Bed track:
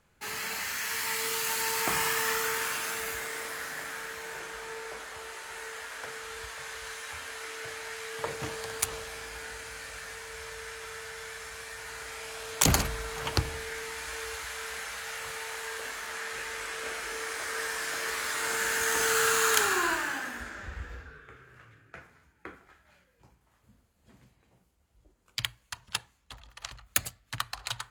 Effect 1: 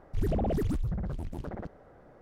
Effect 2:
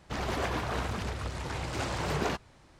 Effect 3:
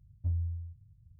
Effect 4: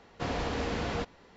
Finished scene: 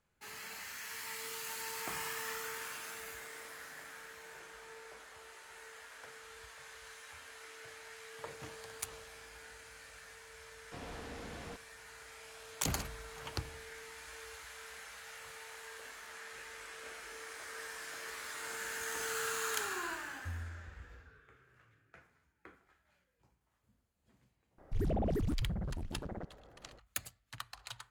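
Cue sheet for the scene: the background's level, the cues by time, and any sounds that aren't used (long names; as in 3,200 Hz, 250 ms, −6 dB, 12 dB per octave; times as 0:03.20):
bed track −12 dB
0:10.52: mix in 4 −14.5 dB
0:20.01: mix in 3 −11 dB
0:24.58: mix in 1 −4.5 dB
not used: 2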